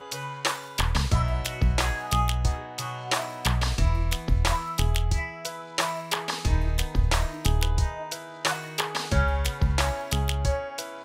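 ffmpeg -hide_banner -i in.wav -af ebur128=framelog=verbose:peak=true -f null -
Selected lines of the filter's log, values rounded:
Integrated loudness:
  I:         -27.0 LUFS
  Threshold: -37.0 LUFS
Loudness range:
  LRA:         1.0 LU
  Threshold: -47.0 LUFS
  LRA low:   -27.5 LUFS
  LRA high:  -26.5 LUFS
True peak:
  Peak:       -9.5 dBFS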